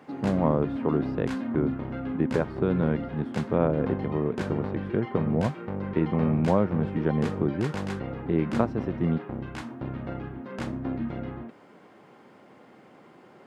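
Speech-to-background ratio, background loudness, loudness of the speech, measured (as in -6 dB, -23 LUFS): 6.0 dB, -34.0 LUFS, -28.0 LUFS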